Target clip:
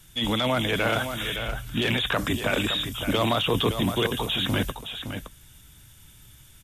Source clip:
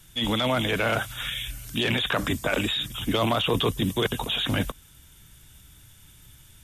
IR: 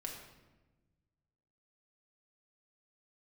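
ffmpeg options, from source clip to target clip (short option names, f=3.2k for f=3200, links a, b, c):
-filter_complex "[0:a]asettb=1/sr,asplit=3[a][b][c];[a]atrim=end=1.364[d];[b]atrim=start=1.36:end=1.82,asetpts=PTS-STARTPTS,afade=t=in:d=0.004:c=qsin,afade=t=out:st=0.456:d=0.004:c=qsin,bass=f=250:g=4,treble=f=4k:g=-12[e];[c]atrim=start=1.816[f];[d][e]acrossfade=d=0.004:c1=hsin:c2=qsin[g];[g][f]acrossfade=d=0.004:c1=qsin:c2=hsin,asplit=2[h][i];[i]aecho=0:1:565:0.376[j];[h][j]amix=inputs=2:normalize=0"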